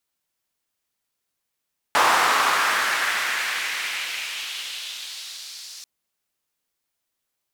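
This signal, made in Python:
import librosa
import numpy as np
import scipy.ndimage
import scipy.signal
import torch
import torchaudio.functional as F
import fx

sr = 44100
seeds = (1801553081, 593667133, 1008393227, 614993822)

y = fx.riser_noise(sr, seeds[0], length_s=3.89, colour='white', kind='bandpass', start_hz=980.0, end_hz=5100.0, q=2.0, swell_db=-29.5, law='exponential')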